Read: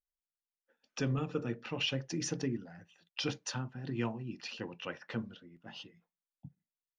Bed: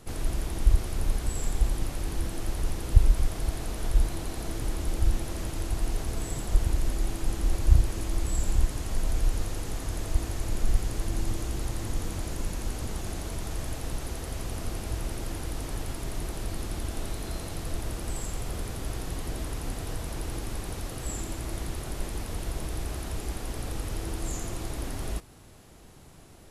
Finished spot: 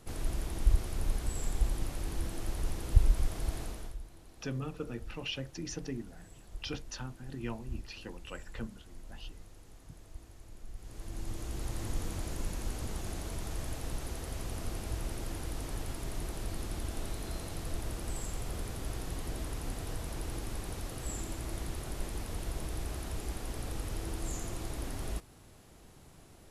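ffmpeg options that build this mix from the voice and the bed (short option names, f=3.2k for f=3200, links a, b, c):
-filter_complex "[0:a]adelay=3450,volume=-4dB[a];[1:a]volume=12dB,afade=t=out:st=3.6:d=0.37:silence=0.149624,afade=t=in:st=10.76:d=1.07:silence=0.141254[b];[a][b]amix=inputs=2:normalize=0"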